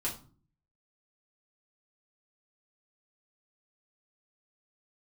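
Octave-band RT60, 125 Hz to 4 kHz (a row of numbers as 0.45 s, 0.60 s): 0.75 s, 0.65 s, 0.45 s, 0.40 s, 0.30 s, 0.30 s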